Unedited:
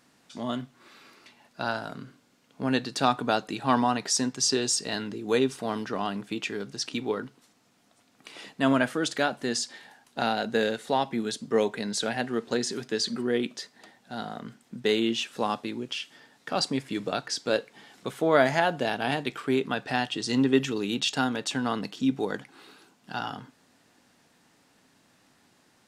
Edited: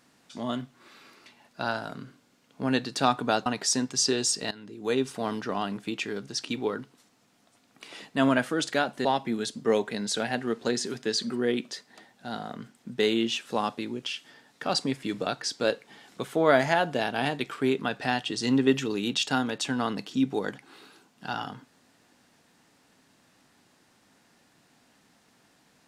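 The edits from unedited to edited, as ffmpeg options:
-filter_complex "[0:a]asplit=4[a][b][c][d];[a]atrim=end=3.462[e];[b]atrim=start=3.898:end=4.95,asetpts=PTS-STARTPTS,afade=t=out:st=1.048:d=0.004:c=hsin:silence=0.141254[f];[c]atrim=start=4.95:end=9.492,asetpts=PTS-STARTPTS,afade=t=in:d=0.63:silence=0.141254[g];[d]atrim=start=10.908[h];[f][g]concat=n=2:v=0:a=1[i];[e][i]acrossfade=d=0.004:c1=hsin:c2=hsin[j];[j][h]acrossfade=d=0.004:c1=hsin:c2=hsin"

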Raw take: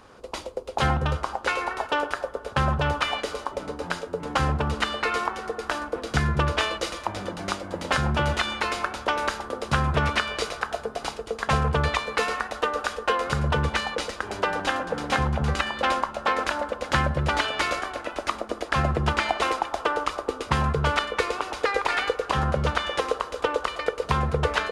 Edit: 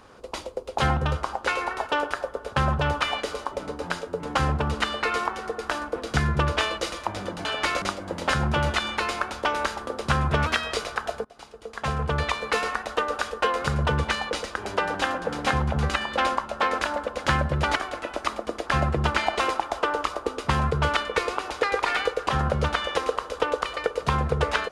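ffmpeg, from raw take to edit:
-filter_complex "[0:a]asplit=7[a][b][c][d][e][f][g];[a]atrim=end=7.452[h];[b]atrim=start=17.408:end=17.782[i];[c]atrim=start=7.448:end=10.094[j];[d]atrim=start=10.09:end=10.4,asetpts=PTS-STARTPTS,asetrate=47628,aresample=44100,atrim=end_sample=12658,asetpts=PTS-STARTPTS[k];[e]atrim=start=10.396:end=10.9,asetpts=PTS-STARTPTS,afade=t=out:st=0.5:d=0.004:c=hsin:silence=0.0630957[l];[f]atrim=start=10.9:end=17.412,asetpts=PTS-STARTPTS,afade=t=in:d=1.2:silence=0.0630957[m];[g]atrim=start=17.778[n];[h][i]acrossfade=d=0.004:c1=hsin:c2=hsin[o];[o][j]acrossfade=d=0.004:c1=hsin:c2=hsin[p];[p][k]acrossfade=d=0.004:c1=hsin:c2=hsin[q];[l][m]concat=n=2:v=0:a=1[r];[q][r]acrossfade=d=0.004:c1=hsin:c2=hsin[s];[s][n]acrossfade=d=0.004:c1=hsin:c2=hsin"

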